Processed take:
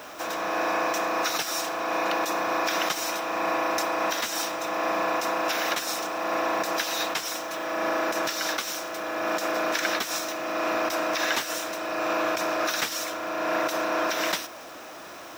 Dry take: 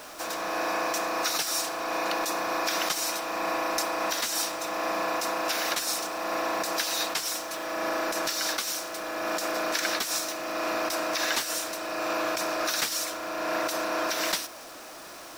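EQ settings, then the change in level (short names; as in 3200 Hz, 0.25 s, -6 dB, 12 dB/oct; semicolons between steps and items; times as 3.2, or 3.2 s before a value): HPF 60 Hz; bell 4500 Hz -6.5 dB 0.22 oct; bell 10000 Hz -9.5 dB 1.1 oct; +3.0 dB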